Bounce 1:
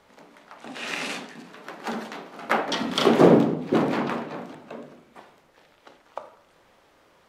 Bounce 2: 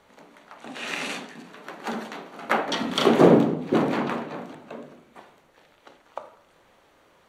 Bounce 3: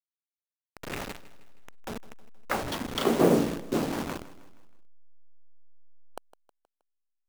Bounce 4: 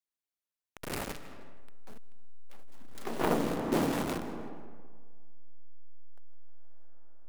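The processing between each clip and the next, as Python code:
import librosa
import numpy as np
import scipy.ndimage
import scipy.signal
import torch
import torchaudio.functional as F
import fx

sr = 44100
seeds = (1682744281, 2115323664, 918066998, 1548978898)

y1 = fx.notch(x, sr, hz=5100.0, q=9.4)
y2 = fx.delta_hold(y1, sr, step_db=-22.5)
y2 = fx.echo_feedback(y2, sr, ms=158, feedback_pct=49, wet_db=-17.5)
y2 = y2 * 10.0 ** (-6.0 / 20.0)
y3 = fx.self_delay(y2, sr, depth_ms=0.68)
y3 = fx.rev_freeverb(y3, sr, rt60_s=4.4, hf_ratio=0.35, predelay_ms=90, drr_db=10.0)
y3 = fx.transformer_sat(y3, sr, knee_hz=200.0)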